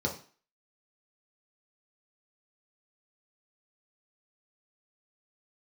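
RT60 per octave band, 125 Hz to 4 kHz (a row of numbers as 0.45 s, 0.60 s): 0.35 s, 0.40 s, 0.40 s, 0.45 s, 0.45 s, 0.40 s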